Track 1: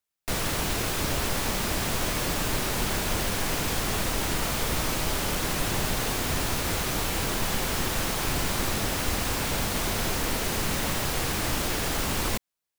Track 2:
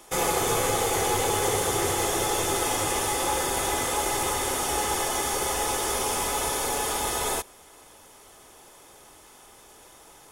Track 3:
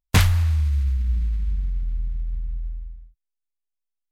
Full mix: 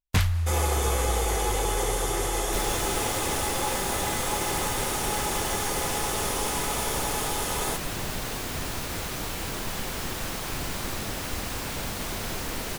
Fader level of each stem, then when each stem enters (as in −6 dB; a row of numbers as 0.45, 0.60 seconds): −4.5, −3.0, −6.5 decibels; 2.25, 0.35, 0.00 seconds